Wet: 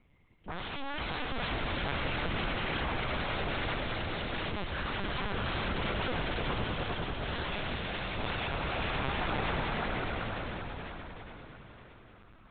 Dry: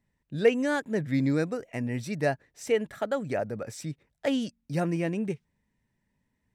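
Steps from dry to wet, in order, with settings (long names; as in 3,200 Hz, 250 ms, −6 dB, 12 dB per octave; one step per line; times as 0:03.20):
gliding playback speed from 114% → 64%
parametric band 210 Hz −6.5 dB 0.4 octaves
downward compressor 6 to 1, threshold −30 dBFS, peak gain reduction 13.5 dB
phase-vocoder stretch with locked phases 1.7×
sine wavefolder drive 17 dB, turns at −26 dBFS
echo that builds up and dies away 101 ms, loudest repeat 5, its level −5 dB
linear-prediction vocoder at 8 kHz pitch kept
level −8.5 dB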